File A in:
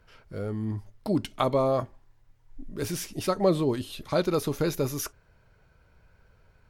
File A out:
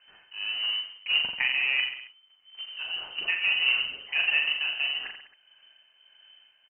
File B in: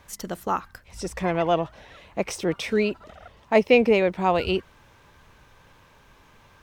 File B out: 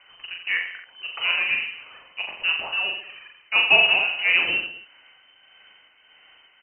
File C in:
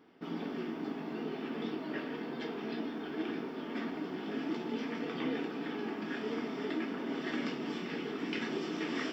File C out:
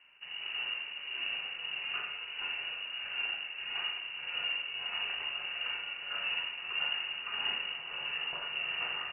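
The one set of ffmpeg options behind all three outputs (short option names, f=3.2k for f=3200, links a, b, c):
-af "tremolo=f=1.6:d=0.49,acrusher=bits=3:mode=log:mix=0:aa=0.000001,aecho=1:1:40|86|138.9|199.7|269.7:0.631|0.398|0.251|0.158|0.1,lowpass=f=2.6k:t=q:w=0.5098,lowpass=f=2.6k:t=q:w=0.6013,lowpass=f=2.6k:t=q:w=0.9,lowpass=f=2.6k:t=q:w=2.563,afreqshift=-3100"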